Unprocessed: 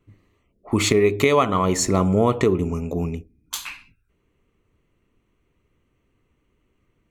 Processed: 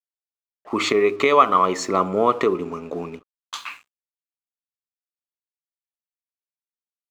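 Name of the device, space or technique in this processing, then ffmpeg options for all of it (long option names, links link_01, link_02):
pocket radio on a weak battery: -af "highpass=320,lowpass=4500,aeval=exprs='sgn(val(0))*max(abs(val(0))-0.00316,0)':channel_layout=same,equalizer=frequency=1200:width_type=o:width=0.38:gain=8,volume=1dB"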